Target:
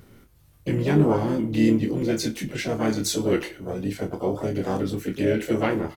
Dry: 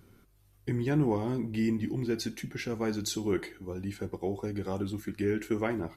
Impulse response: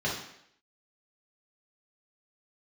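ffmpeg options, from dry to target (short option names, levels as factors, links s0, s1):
-filter_complex "[0:a]asplit=3[s0][s1][s2];[s1]asetrate=58866,aresample=44100,atempo=0.749154,volume=0.501[s3];[s2]asetrate=66075,aresample=44100,atempo=0.66742,volume=0.282[s4];[s0][s3][s4]amix=inputs=3:normalize=0,asplit=2[s5][s6];[s6]adelay=27,volume=0.447[s7];[s5][s7]amix=inputs=2:normalize=0,volume=1.88"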